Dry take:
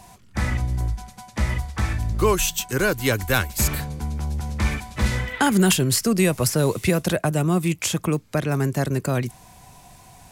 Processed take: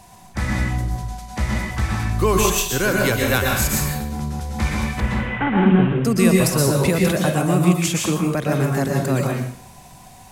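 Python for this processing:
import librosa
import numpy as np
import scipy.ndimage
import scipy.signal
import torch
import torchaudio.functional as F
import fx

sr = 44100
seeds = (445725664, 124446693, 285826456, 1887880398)

y = fx.cvsd(x, sr, bps=16000, at=(5.0, 6.05))
y = fx.rev_plate(y, sr, seeds[0], rt60_s=0.64, hf_ratio=0.95, predelay_ms=105, drr_db=-1.0)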